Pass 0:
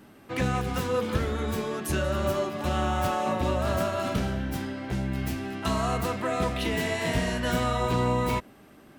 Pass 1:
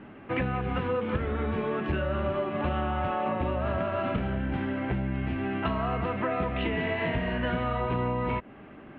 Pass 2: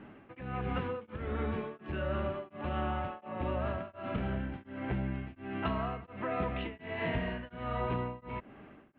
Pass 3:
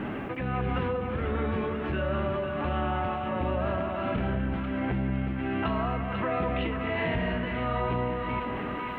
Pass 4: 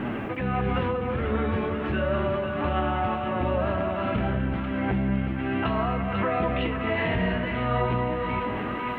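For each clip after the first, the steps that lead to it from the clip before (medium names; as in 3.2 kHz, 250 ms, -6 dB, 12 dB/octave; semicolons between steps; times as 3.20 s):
steep low-pass 2.9 kHz 36 dB/octave; compression, threshold -31 dBFS, peak gain reduction 10.5 dB; trim +5.5 dB
tremolo of two beating tones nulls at 1.4 Hz; trim -4 dB
two-band feedback delay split 970 Hz, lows 183 ms, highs 492 ms, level -12.5 dB; level flattener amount 70%; trim +2.5 dB
flange 0.9 Hz, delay 8 ms, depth 2.7 ms, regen +66%; trim +7.5 dB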